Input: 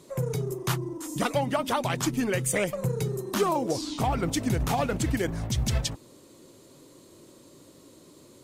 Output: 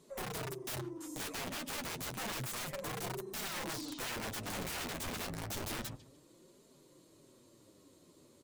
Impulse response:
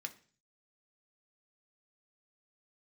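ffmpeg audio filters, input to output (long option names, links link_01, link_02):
-filter_complex "[0:a]asplit=2[link_01][link_02];[link_02]adelay=144,lowpass=frequency=2700:poles=1,volume=-18.5dB,asplit=2[link_03][link_04];[link_04]adelay=144,lowpass=frequency=2700:poles=1,volume=0.35,asplit=2[link_05][link_06];[link_06]adelay=144,lowpass=frequency=2700:poles=1,volume=0.35[link_07];[link_01][link_03][link_05][link_07]amix=inputs=4:normalize=0,aeval=exprs='(mod(17.8*val(0)+1,2)-1)/17.8':channel_layout=same,flanger=delay=4.4:depth=8.3:regen=-21:speed=0.3:shape=triangular,volume=-6.5dB"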